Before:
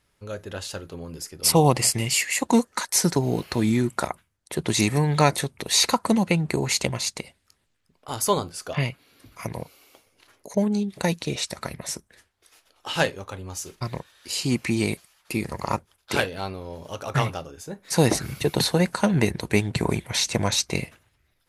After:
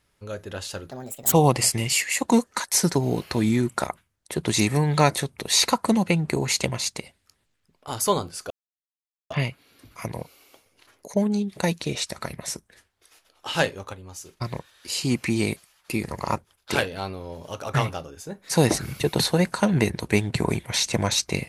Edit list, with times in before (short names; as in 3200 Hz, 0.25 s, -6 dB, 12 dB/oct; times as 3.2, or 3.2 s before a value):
0.91–1.53 speed 150%
8.71 insert silence 0.80 s
13.34–13.82 gain -6 dB